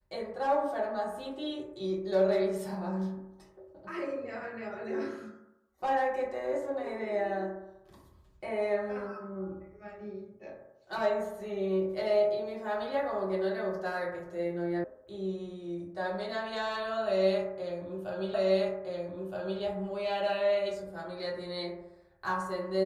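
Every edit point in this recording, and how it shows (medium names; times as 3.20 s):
14.84 s: sound stops dead
18.34 s: repeat of the last 1.27 s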